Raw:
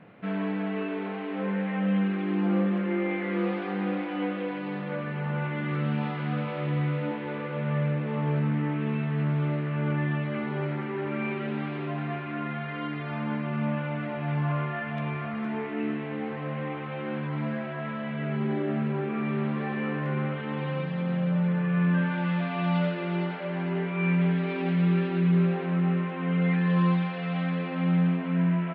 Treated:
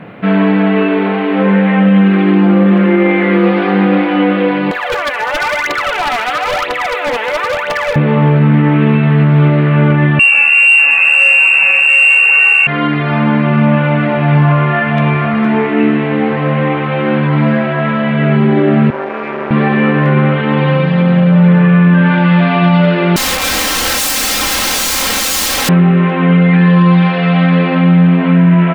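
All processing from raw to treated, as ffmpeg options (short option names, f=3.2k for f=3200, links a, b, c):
-filter_complex "[0:a]asettb=1/sr,asplit=3[a][b][c];[a]atrim=end=4.714[d];[b]atrim=start=4.71:end=7.96,asetpts=PTS-STARTPTS,afade=t=in:d=0.004:c=qsin,afade=t=out:st=3.246:d=0.004:c=qsin,highpass=f=570:w=0.5412,highpass=f=570:w=1.3066,aphaser=in_gain=1:out_gain=1:delay=4.7:decay=0.77:speed=1:type=triangular,aeval=exprs='0.0355*(abs(mod(val(0)/0.0355+3,4)-2)-1)':c=same[e];[c]atrim=start=7.956[f];[d][e]acrossfade=d=0.004:c1=hsin:c2=qsin[g];[g][f]acrossfade=d=0.004:c1=qsin:c2=hsin,asettb=1/sr,asplit=3[h][i][j];[h]atrim=end=10.194[k];[i]atrim=start=10.19:end=12.67,asetpts=PTS-STARTPTS,afade=t=in:d=0.004:c=qsin,afade=t=out:st=2.476:d=0.004:c=qsin,equalizer=f=140:w=0.62:g=12,aecho=1:1:481|712:0.376|0.596,atrim=end_sample=109368,lowpass=f=2.5k:t=q:w=0.5098,lowpass=f=2.5k:t=q:w=0.6013,lowpass=f=2.5k:t=q:w=0.9,lowpass=f=2.5k:t=q:w=2.563,afreqshift=-2900[l];[j]atrim=start=12.666[m];[k][l]acrossfade=d=0.004:c1=hsin:c2=qsin[n];[n][m]acrossfade=d=0.004:c1=qsin:c2=hsin,asettb=1/sr,asplit=3[o][p][q];[o]atrim=end=18.904[r];[p]atrim=start=18.9:end=19.51,asetpts=PTS-STARTPTS,afade=t=in:d=0.004:c=qsin,afade=t=out:st=0.606:d=0.004:c=qsin,aeval=exprs='max(val(0),0)':c=same,highpass=450,lowpass=2.1k[s];[q]atrim=start=19.506[t];[r][s]acrossfade=d=0.004:c1=hsin:c2=qsin[u];[u][t]acrossfade=d=0.004:c1=qsin:c2=hsin,asettb=1/sr,asplit=3[v][w][x];[v]atrim=end=23.164[y];[w]atrim=start=23.16:end=25.69,asetpts=PTS-STARTPTS,afade=t=in:d=0.004:c=qsin,afade=t=out:st=2.526:d=0.004:c=qsin,afreqshift=340,aeval=exprs='(mod(35.5*val(0)+1,2)-1)/35.5':c=same,aecho=1:1:3.8:0.7,atrim=end_sample=111573[z];[x]atrim=start=25.686[aa];[y][z]acrossfade=d=0.004:c1=hsin:c2=qsin[ab];[ab][aa]acrossfade=d=0.004:c1=qsin:c2=hsin,acontrast=80,alimiter=level_in=13.5dB:limit=-1dB:release=50:level=0:latency=1,volume=-1dB"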